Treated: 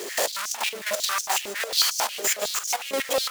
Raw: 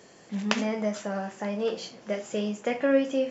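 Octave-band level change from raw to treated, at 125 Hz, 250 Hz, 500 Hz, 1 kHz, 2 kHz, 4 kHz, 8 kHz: under -15 dB, -16.0 dB, -3.0 dB, +7.5 dB, +7.0 dB, +14.0 dB, no reading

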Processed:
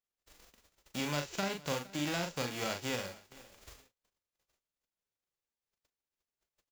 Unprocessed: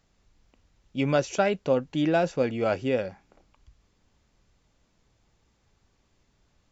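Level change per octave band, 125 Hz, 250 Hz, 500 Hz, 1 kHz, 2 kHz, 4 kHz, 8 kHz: -9.0 dB, -11.0 dB, -14.5 dB, -9.5 dB, -5.5 dB, +0.5 dB, no reading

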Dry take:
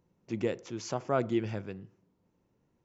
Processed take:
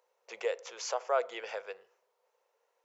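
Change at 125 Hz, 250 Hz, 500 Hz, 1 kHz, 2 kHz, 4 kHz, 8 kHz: under -40 dB, -23.5 dB, -0.5 dB, +1.5 dB, +2.5 dB, +3.0 dB, no reading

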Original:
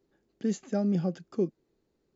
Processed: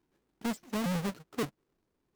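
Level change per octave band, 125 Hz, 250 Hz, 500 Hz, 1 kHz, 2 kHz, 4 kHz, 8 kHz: -4.5 dB, -5.5 dB, -6.5 dB, +5.0 dB, +9.5 dB, +8.5 dB, no reading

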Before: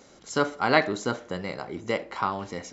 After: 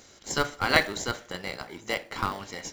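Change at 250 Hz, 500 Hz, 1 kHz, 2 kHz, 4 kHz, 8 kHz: -5.5 dB, -5.0 dB, -3.0 dB, +1.5 dB, +4.0 dB, no reading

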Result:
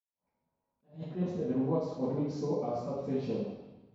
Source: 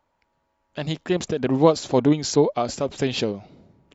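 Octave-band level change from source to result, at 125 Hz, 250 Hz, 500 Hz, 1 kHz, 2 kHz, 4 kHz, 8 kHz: -9.5 dB, -10.5 dB, -12.5 dB, -14.0 dB, under -20 dB, -25.5 dB, no reading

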